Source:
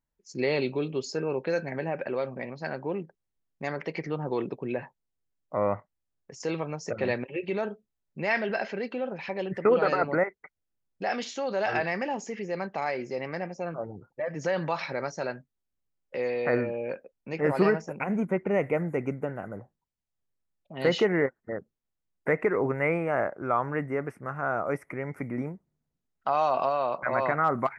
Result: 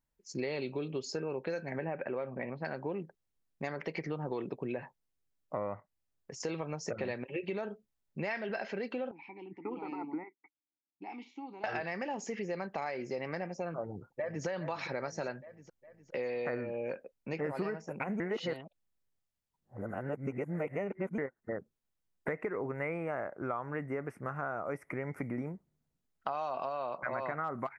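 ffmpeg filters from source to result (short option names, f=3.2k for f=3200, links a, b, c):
-filter_complex "[0:a]asettb=1/sr,asplit=3[a][b][c];[a]atrim=end=1.784[d];[b]atrim=start=1.78:end=2.65,asetpts=PTS-STARTPTS,afade=t=in:d=0.004:c=qsin,afade=t=out:st=0.866:d=0.004:c=qsin,lowpass=f=2.7k:w=0.5412,lowpass=f=2.7k:w=1.3066[e];[c]atrim=start=2.646[f];[d][e]acrossfade=d=0.004:c1=hsin:c2=qsin[g];[g][f]acrossfade=d=0.004:c1=qsin:c2=hsin,asettb=1/sr,asplit=3[h][i][j];[h]atrim=end=9.114[k];[i]atrim=start=9.11:end=11.64,asetpts=PTS-STARTPTS,afade=t=in:d=0.004:c=qsin,afade=t=out:st=2.526:d=0.004:c=qsin,asplit=3[l][m][n];[l]bandpass=f=300:t=q:w=8,volume=0dB[o];[m]bandpass=f=870:t=q:w=8,volume=-6dB[p];[n]bandpass=f=2.24k:t=q:w=8,volume=-9dB[q];[o][p][q]amix=inputs=3:normalize=0[r];[j]atrim=start=11.636[s];[k][r]acrossfade=d=0.004:c1=hsin:c2=qsin[t];[t][s]acrossfade=d=0.004:c1=qsin:c2=hsin,asplit=2[u][v];[v]afade=t=in:st=13.82:d=0.01,afade=t=out:st=14.46:d=0.01,aecho=0:1:410|820|1230|1640|2050|2460:0.316228|0.173925|0.0956589|0.0526124|0.0289368|0.0159152[w];[u][w]amix=inputs=2:normalize=0,asplit=3[x][y][z];[x]atrim=end=18.202[aa];[y]atrim=start=18.198:end=21.182,asetpts=PTS-STARTPTS,areverse[ab];[z]atrim=start=21.178[ac];[aa][ab]acrossfade=d=0.004:c1=hsin:c2=hsin[ad];[ad][ac]acrossfade=d=0.004:c1=hsin:c2=hsin,acompressor=threshold=-33dB:ratio=6"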